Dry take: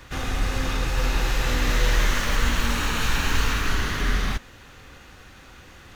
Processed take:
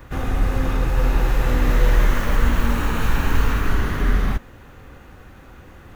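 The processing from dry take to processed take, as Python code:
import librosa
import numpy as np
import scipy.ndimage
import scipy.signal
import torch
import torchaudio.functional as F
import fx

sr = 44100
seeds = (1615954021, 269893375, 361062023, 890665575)

y = fx.peak_eq(x, sr, hz=4900.0, db=-14.5, octaves=2.7)
y = F.gain(torch.from_numpy(y), 5.5).numpy()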